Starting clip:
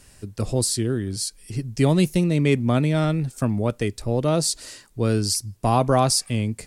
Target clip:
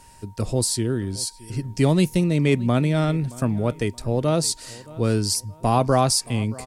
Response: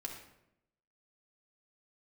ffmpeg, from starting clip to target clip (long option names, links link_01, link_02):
-filter_complex "[0:a]aeval=exprs='val(0)+0.00282*sin(2*PI*930*n/s)':channel_layout=same,asplit=2[link_01][link_02];[link_02]adelay=623,lowpass=frequency=3900:poles=1,volume=-20.5dB,asplit=2[link_03][link_04];[link_04]adelay=623,lowpass=frequency=3900:poles=1,volume=0.32[link_05];[link_01][link_03][link_05]amix=inputs=3:normalize=0"